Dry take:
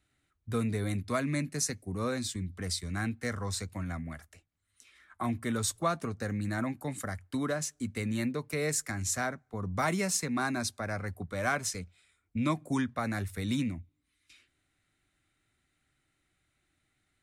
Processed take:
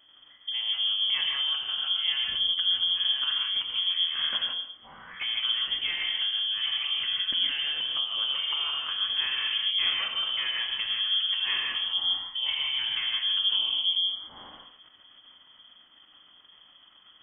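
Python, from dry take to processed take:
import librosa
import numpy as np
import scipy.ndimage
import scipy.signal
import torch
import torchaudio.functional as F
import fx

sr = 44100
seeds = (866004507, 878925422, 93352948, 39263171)

p1 = fx.spec_trails(x, sr, decay_s=0.47)
p2 = scipy.signal.sosfilt(scipy.signal.butter(4, 78.0, 'highpass', fs=sr, output='sos'), p1)
p3 = fx.peak_eq(p2, sr, hz=100.0, db=14.5, octaves=1.7)
p4 = fx.transient(p3, sr, attack_db=-6, sustain_db=10)
p5 = fx.over_compress(p4, sr, threshold_db=-34.0, ratio=-0.5)
p6 = p4 + F.gain(torch.from_numpy(p5), 2.5).numpy()
p7 = 10.0 ** (-20.5 / 20.0) * np.tanh(p6 / 10.0 ** (-20.5 / 20.0))
p8 = p7 + fx.echo_single(p7, sr, ms=138, db=-17.0, dry=0)
p9 = fx.rev_gated(p8, sr, seeds[0], gate_ms=190, shape='rising', drr_db=0.5)
p10 = fx.freq_invert(p9, sr, carrier_hz=3300)
y = F.gain(torch.from_numpy(p10), -6.0).numpy()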